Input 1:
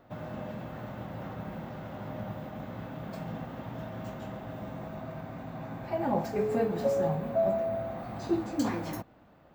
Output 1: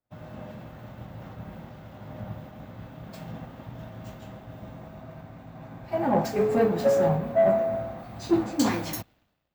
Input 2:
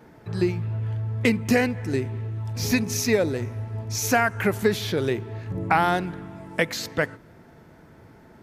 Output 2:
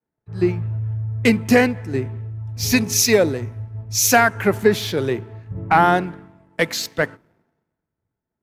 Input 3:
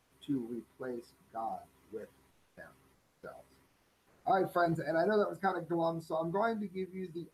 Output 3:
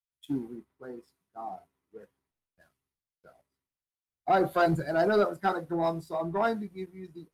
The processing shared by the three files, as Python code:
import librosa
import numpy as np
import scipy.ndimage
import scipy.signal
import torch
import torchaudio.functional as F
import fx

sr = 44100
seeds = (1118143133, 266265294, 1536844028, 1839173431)

y = fx.leveller(x, sr, passes=1)
y = fx.band_widen(y, sr, depth_pct=100)